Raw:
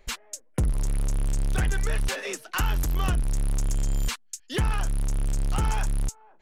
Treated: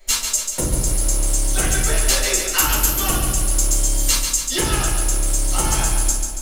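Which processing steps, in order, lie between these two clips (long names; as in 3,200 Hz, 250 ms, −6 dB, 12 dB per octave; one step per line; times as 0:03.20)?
bass and treble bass −11 dB, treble +14 dB
rectangular room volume 330 cubic metres, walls furnished, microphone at 7 metres
feedback echo at a low word length 141 ms, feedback 55%, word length 8 bits, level −5.5 dB
level −3.5 dB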